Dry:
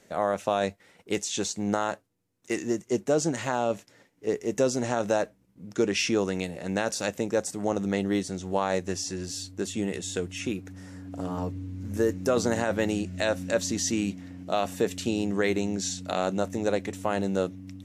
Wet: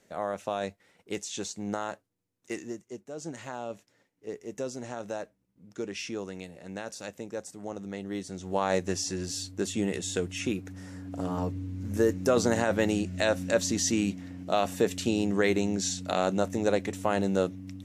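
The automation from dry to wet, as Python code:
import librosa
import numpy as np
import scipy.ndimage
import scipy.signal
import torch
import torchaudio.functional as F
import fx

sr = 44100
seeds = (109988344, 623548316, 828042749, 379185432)

y = fx.gain(x, sr, db=fx.line((2.52, -6.0), (3.1, -18.0), (3.29, -10.5), (8.01, -10.5), (8.72, 0.5)))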